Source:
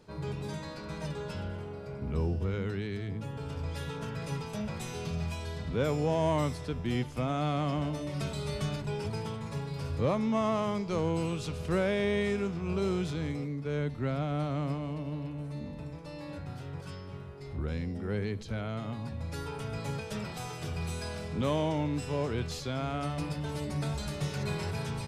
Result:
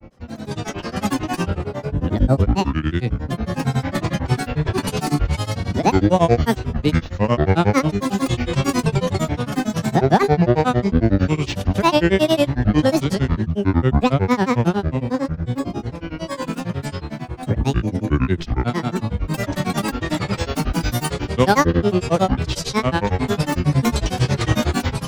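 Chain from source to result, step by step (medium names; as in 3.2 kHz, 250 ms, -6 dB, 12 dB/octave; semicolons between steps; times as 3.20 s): level rider gain up to 16 dB; granulator 107 ms, grains 11 per s, pitch spread up and down by 12 st; trim +2 dB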